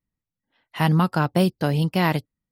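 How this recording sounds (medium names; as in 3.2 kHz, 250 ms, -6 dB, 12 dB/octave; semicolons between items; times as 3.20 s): noise floor -89 dBFS; spectral tilt -6.0 dB/octave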